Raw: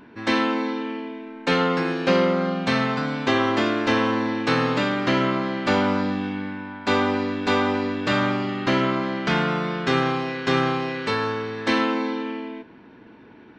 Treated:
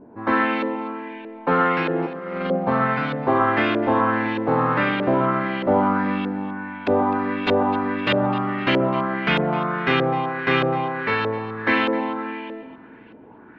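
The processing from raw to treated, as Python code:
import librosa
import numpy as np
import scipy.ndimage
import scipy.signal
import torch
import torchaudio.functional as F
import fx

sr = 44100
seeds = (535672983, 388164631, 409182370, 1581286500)

y = fx.over_compress(x, sr, threshold_db=-25.0, ratio=-0.5, at=(1.93, 2.56), fade=0.02)
y = fx.filter_lfo_lowpass(y, sr, shape='saw_up', hz=1.6, low_hz=540.0, high_hz=3200.0, q=2.2)
y = fx.echo_alternate(y, sr, ms=128, hz=1400.0, feedback_pct=59, wet_db=-11.0)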